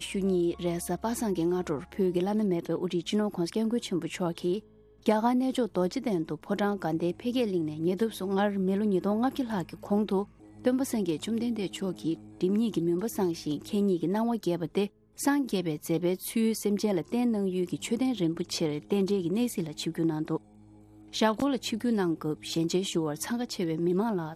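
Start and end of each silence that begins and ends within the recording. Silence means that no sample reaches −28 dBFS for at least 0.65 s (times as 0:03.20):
0:20.37–0:21.15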